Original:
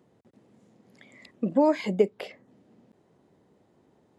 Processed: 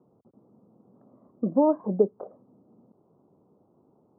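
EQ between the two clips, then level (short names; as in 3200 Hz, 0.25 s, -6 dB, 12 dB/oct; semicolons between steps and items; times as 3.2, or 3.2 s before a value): HPF 100 Hz; steep low-pass 1300 Hz 72 dB/oct; air absorption 460 m; +1.5 dB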